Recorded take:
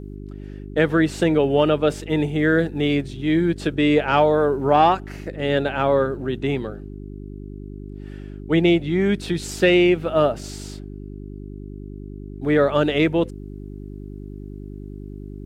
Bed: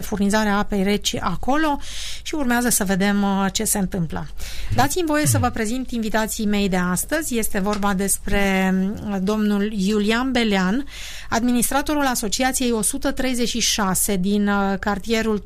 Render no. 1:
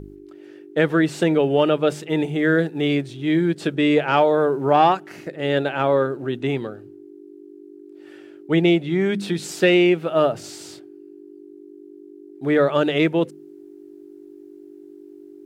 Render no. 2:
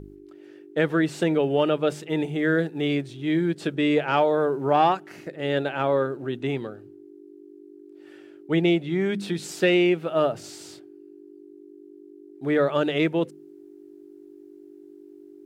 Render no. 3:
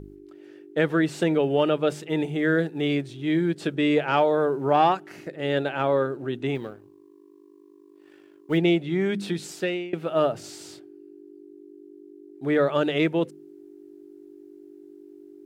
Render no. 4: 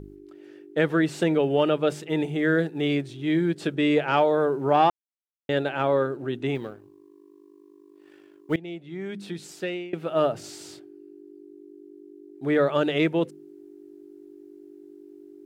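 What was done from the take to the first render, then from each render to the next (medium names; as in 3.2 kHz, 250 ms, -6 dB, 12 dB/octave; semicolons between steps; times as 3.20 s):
de-hum 50 Hz, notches 5
trim -4 dB
6.55–8.58 s: companding laws mixed up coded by A; 9.31–9.93 s: fade out, to -23 dB
4.90–5.49 s: mute; 8.56–10.31 s: fade in, from -21.5 dB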